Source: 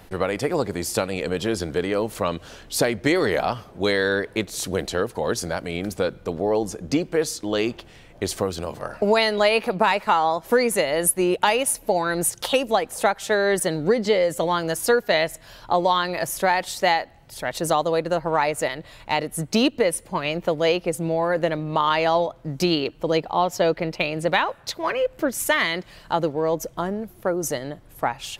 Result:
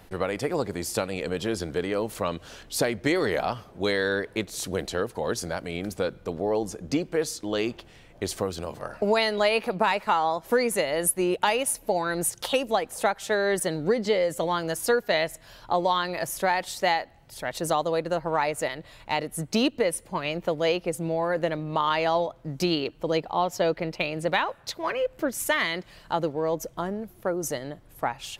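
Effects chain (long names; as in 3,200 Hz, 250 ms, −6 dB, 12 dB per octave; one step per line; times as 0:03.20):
0:02.09–0:02.63: one half of a high-frequency compander encoder only
level −4 dB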